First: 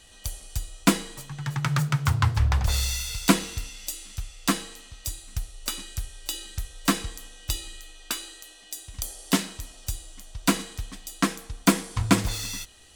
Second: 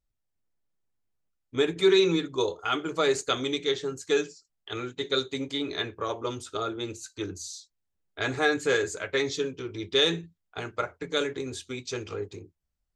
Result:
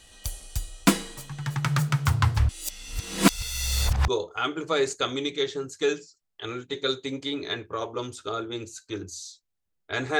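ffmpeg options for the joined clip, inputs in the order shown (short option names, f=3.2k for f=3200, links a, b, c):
-filter_complex "[0:a]apad=whole_dur=10.19,atrim=end=10.19,asplit=2[a][b];[a]atrim=end=2.492[c];[b]atrim=start=2.488:end=4.082,asetpts=PTS-STARTPTS,areverse[d];[1:a]atrim=start=2.358:end=8.47[e];[c][d]acrossfade=d=0.004:c1=hsin:c2=hsin[f];[f][e]acrossfade=d=0.004:c1=hsin:c2=hsin"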